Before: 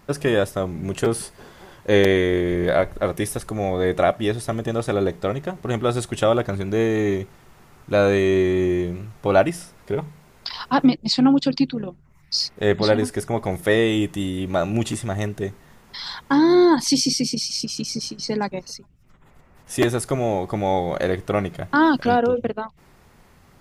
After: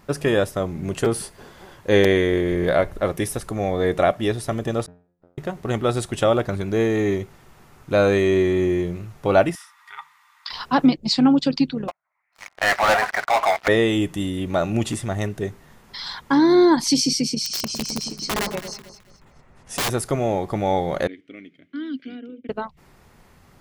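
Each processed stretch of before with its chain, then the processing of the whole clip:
4.86–5.38 LPF 1300 Hz + flipped gate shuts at -20 dBFS, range -39 dB + resonator 88 Hz, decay 0.44 s, mix 100%
9.55–10.5 elliptic high-pass 910 Hz + bell 11000 Hz -5.5 dB 2.3 oct + small resonant body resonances 1200/1900/3500 Hz, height 12 dB
11.88–13.68 elliptic band-pass 660–2300 Hz + sample leveller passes 5
17.45–19.9 LPF 9800 Hz 24 dB/oct + wrapped overs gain 18 dB + echo with dull and thin repeats by turns 0.107 s, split 1100 Hz, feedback 55%, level -7.5 dB
21.07–22.49 vowel filter i + low shelf 240 Hz -11.5 dB + mismatched tape noise reduction decoder only
whole clip: dry

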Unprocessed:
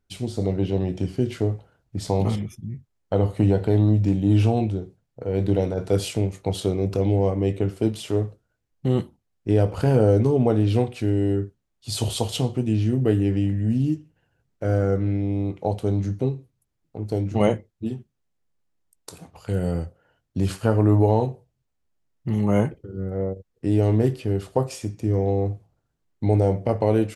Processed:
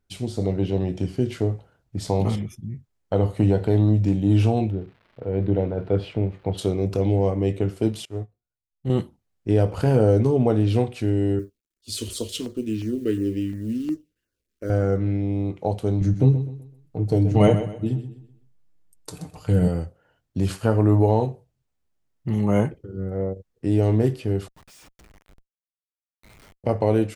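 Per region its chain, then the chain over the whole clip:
4.69–6.57 crackle 480/s -39 dBFS + air absorption 400 m
8.05–8.9 low shelf 90 Hz +10 dB + resonator 120 Hz, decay 0.31 s + upward expander 2.5:1, over -35 dBFS
11.39–14.7 G.711 law mismatch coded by A + fixed phaser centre 330 Hz, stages 4 + LFO notch saw down 2.8 Hz 440–4000 Hz
16.01–19.68 low shelf 240 Hz +9 dB + comb 6.6 ms, depth 49% + feedback echo 0.127 s, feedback 34%, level -11.5 dB
24.48–26.64 Bessel high-pass 2500 Hz, order 8 + Schmitt trigger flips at -50 dBFS
whole clip: dry

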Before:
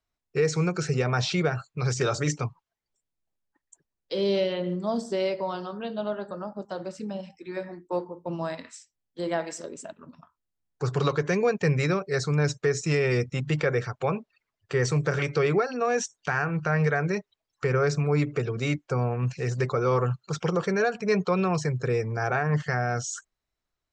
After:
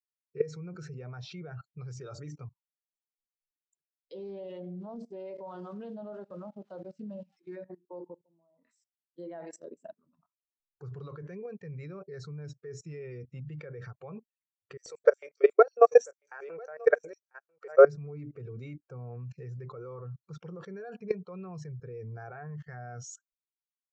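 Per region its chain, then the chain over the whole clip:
4.14–7.56 switching spikes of -32.5 dBFS + air absorption 77 m + Doppler distortion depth 0.33 ms
8.15–8.65 low shelf 160 Hz -6.5 dB + compressor 3:1, threshold -48 dBFS + polynomial smoothing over 65 samples
14.77–17.85 high shelf 2800 Hz +4.5 dB + LFO high-pass square 5.5 Hz 530–7600 Hz + echo 0.994 s -15.5 dB
whole clip: high shelf 7800 Hz -5.5 dB; level quantiser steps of 20 dB; spectral expander 1.5:1; gain +6.5 dB

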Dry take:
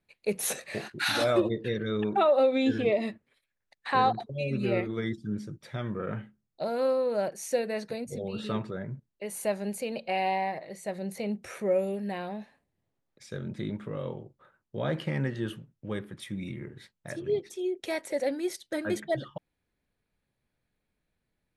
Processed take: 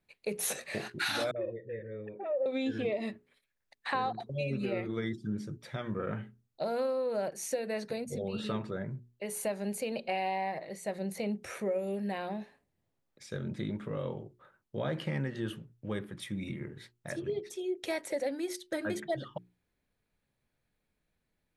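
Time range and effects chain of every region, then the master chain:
1.31–2.46 vocal tract filter e + bell 110 Hz +10.5 dB 0.61 oct + dispersion highs, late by 50 ms, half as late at 420 Hz
whole clip: compressor, threshold -29 dBFS; notches 60/120/180/240/300/360/420 Hz

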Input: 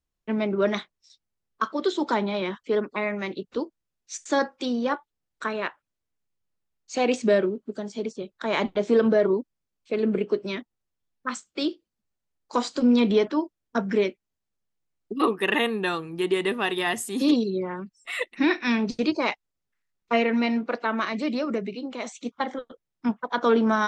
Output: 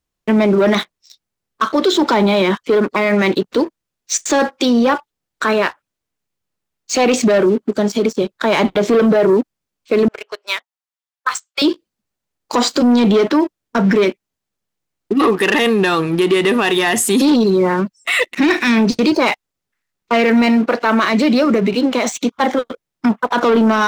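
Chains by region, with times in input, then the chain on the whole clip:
10.08–11.62 HPF 720 Hz 24 dB/oct + upward expander, over -47 dBFS
whole clip: sample leveller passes 2; low shelf 63 Hz -8.5 dB; maximiser +18 dB; gain -6.5 dB

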